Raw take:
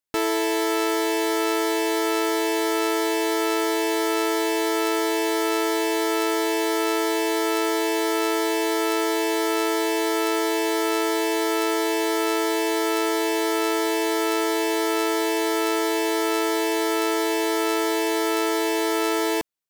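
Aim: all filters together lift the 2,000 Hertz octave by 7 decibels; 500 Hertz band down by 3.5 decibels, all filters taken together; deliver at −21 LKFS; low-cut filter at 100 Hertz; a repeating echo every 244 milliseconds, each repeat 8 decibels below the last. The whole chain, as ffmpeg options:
ffmpeg -i in.wav -af "highpass=100,equalizer=frequency=500:width_type=o:gain=-5,equalizer=frequency=2000:width_type=o:gain=8.5,aecho=1:1:244|488|732|976|1220:0.398|0.159|0.0637|0.0255|0.0102,volume=0.5dB" out.wav

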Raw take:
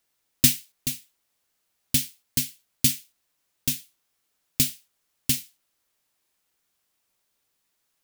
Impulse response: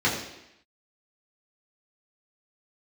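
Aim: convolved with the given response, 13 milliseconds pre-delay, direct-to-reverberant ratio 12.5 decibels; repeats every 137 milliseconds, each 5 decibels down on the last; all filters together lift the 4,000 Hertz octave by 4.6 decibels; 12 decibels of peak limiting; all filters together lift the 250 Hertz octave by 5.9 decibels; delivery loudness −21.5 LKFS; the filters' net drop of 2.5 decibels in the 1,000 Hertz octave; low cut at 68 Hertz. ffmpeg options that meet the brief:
-filter_complex "[0:a]highpass=68,equalizer=frequency=250:width_type=o:gain=6.5,equalizer=frequency=1000:width_type=o:gain=-4.5,equalizer=frequency=4000:width_type=o:gain=6,alimiter=limit=-11dB:level=0:latency=1,aecho=1:1:137|274|411|548|685|822|959:0.562|0.315|0.176|0.0988|0.0553|0.031|0.0173,asplit=2[link_01][link_02];[1:a]atrim=start_sample=2205,adelay=13[link_03];[link_02][link_03]afir=irnorm=-1:irlink=0,volume=-27.5dB[link_04];[link_01][link_04]amix=inputs=2:normalize=0,volume=6.5dB"

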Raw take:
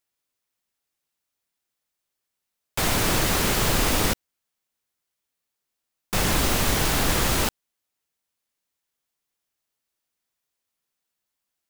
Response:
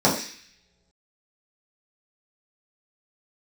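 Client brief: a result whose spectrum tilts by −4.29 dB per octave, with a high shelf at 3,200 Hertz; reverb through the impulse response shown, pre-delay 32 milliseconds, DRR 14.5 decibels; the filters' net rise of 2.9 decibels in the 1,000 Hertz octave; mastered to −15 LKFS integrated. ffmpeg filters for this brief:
-filter_complex "[0:a]equalizer=frequency=1000:width_type=o:gain=4.5,highshelf=frequency=3200:gain=-7,asplit=2[link_01][link_02];[1:a]atrim=start_sample=2205,adelay=32[link_03];[link_02][link_03]afir=irnorm=-1:irlink=0,volume=-33.5dB[link_04];[link_01][link_04]amix=inputs=2:normalize=0,volume=9dB"

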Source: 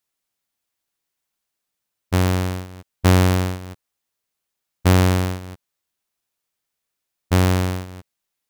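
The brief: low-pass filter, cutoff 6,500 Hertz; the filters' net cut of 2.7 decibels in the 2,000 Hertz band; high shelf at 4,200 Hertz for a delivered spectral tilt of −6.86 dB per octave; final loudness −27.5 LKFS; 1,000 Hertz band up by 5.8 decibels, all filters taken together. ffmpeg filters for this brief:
ffmpeg -i in.wav -af "lowpass=6500,equalizer=frequency=1000:width_type=o:gain=9,equalizer=frequency=2000:width_type=o:gain=-6,highshelf=frequency=4200:gain=-5,volume=-8dB" out.wav

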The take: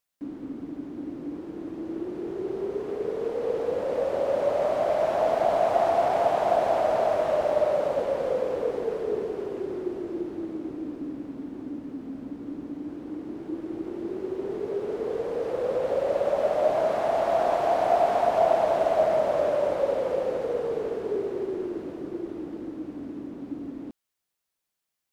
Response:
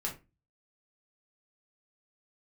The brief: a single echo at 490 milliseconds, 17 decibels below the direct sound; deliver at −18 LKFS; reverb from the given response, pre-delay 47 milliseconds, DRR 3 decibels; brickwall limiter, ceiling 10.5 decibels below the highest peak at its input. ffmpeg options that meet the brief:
-filter_complex "[0:a]alimiter=limit=-20dB:level=0:latency=1,aecho=1:1:490:0.141,asplit=2[link_01][link_02];[1:a]atrim=start_sample=2205,adelay=47[link_03];[link_02][link_03]afir=irnorm=-1:irlink=0,volume=-5.5dB[link_04];[link_01][link_04]amix=inputs=2:normalize=0,volume=10.5dB"

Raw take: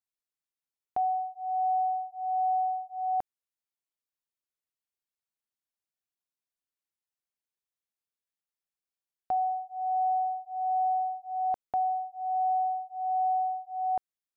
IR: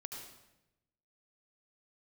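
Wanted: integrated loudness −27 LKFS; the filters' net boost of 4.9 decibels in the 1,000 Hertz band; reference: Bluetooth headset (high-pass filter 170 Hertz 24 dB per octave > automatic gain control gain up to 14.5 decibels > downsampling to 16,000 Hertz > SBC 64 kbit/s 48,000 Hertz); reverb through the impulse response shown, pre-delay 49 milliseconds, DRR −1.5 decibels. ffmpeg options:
-filter_complex "[0:a]equalizer=frequency=1000:width_type=o:gain=8.5,asplit=2[link_01][link_02];[1:a]atrim=start_sample=2205,adelay=49[link_03];[link_02][link_03]afir=irnorm=-1:irlink=0,volume=4dB[link_04];[link_01][link_04]amix=inputs=2:normalize=0,highpass=frequency=170:width=0.5412,highpass=frequency=170:width=1.3066,dynaudnorm=maxgain=14.5dB,aresample=16000,aresample=44100,volume=-1dB" -ar 48000 -c:a sbc -b:a 64k

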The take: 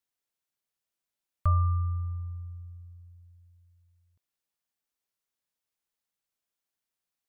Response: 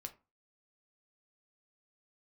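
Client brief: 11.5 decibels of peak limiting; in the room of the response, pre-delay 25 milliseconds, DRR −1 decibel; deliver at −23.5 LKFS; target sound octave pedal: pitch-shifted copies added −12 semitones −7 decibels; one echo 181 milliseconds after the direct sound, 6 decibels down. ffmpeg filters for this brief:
-filter_complex "[0:a]alimiter=level_in=3dB:limit=-24dB:level=0:latency=1,volume=-3dB,aecho=1:1:181:0.501,asplit=2[link_01][link_02];[1:a]atrim=start_sample=2205,adelay=25[link_03];[link_02][link_03]afir=irnorm=-1:irlink=0,volume=5dB[link_04];[link_01][link_04]amix=inputs=2:normalize=0,asplit=2[link_05][link_06];[link_06]asetrate=22050,aresample=44100,atempo=2,volume=-7dB[link_07];[link_05][link_07]amix=inputs=2:normalize=0,volume=9.5dB"

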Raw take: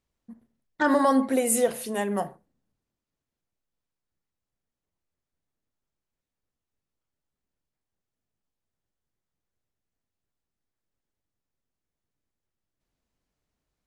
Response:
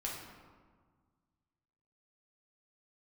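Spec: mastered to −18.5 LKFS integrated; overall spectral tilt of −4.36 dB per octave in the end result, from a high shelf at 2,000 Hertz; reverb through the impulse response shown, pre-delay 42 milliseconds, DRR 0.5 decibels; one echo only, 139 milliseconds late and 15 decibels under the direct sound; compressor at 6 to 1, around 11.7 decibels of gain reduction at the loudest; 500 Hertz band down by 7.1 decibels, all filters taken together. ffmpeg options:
-filter_complex "[0:a]equalizer=frequency=500:width_type=o:gain=-7.5,highshelf=frequency=2000:gain=-5.5,acompressor=threshold=-33dB:ratio=6,aecho=1:1:139:0.178,asplit=2[link_01][link_02];[1:a]atrim=start_sample=2205,adelay=42[link_03];[link_02][link_03]afir=irnorm=-1:irlink=0,volume=-2dB[link_04];[link_01][link_04]amix=inputs=2:normalize=0,volume=16dB"

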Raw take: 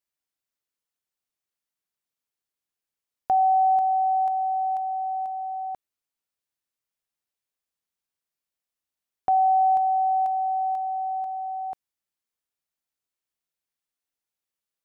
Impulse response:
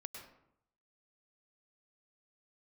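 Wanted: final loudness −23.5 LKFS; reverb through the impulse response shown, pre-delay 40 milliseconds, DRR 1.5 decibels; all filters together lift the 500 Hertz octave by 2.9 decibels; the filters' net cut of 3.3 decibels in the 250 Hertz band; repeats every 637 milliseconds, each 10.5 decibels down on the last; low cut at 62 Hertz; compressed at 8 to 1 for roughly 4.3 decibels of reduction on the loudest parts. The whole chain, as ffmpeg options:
-filter_complex "[0:a]highpass=62,equalizer=frequency=250:width_type=o:gain=-8.5,equalizer=frequency=500:width_type=o:gain=8,acompressor=threshold=-19dB:ratio=8,aecho=1:1:637|1274|1911:0.299|0.0896|0.0269,asplit=2[link_01][link_02];[1:a]atrim=start_sample=2205,adelay=40[link_03];[link_02][link_03]afir=irnorm=-1:irlink=0,volume=2dB[link_04];[link_01][link_04]amix=inputs=2:normalize=0,volume=3.5dB"

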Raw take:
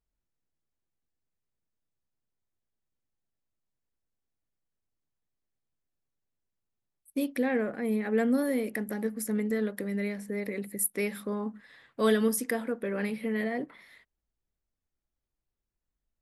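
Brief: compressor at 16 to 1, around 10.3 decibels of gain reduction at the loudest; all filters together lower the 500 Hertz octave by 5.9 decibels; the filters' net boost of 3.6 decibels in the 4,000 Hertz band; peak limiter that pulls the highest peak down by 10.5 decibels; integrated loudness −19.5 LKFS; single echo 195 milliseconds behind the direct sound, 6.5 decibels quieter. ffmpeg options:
ffmpeg -i in.wav -af "equalizer=frequency=500:width_type=o:gain=-7,equalizer=frequency=4000:width_type=o:gain=4.5,acompressor=threshold=-33dB:ratio=16,alimiter=level_in=7dB:limit=-24dB:level=0:latency=1,volume=-7dB,aecho=1:1:195:0.473,volume=20dB" out.wav

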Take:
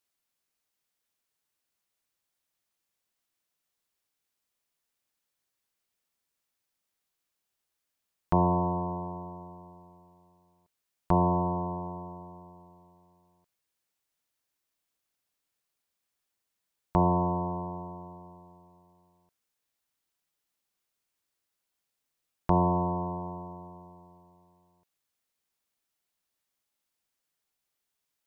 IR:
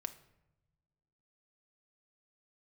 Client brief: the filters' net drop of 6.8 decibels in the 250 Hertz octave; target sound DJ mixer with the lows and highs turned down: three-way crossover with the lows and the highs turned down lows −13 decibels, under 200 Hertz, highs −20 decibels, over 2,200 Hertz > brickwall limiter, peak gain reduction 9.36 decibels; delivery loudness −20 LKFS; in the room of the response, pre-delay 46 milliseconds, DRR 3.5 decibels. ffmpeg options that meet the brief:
-filter_complex "[0:a]equalizer=frequency=250:width_type=o:gain=-6,asplit=2[link_01][link_02];[1:a]atrim=start_sample=2205,adelay=46[link_03];[link_02][link_03]afir=irnorm=-1:irlink=0,volume=-1.5dB[link_04];[link_01][link_04]amix=inputs=2:normalize=0,acrossover=split=200 2200:gain=0.224 1 0.1[link_05][link_06][link_07];[link_05][link_06][link_07]amix=inputs=3:normalize=0,volume=15dB,alimiter=limit=-8.5dB:level=0:latency=1"

